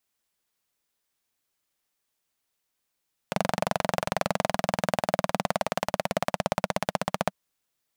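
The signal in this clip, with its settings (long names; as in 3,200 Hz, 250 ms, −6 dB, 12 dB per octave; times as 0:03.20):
pulse-train model of a single-cylinder engine, changing speed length 4.00 s, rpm 2,800, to 1,800, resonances 190/630 Hz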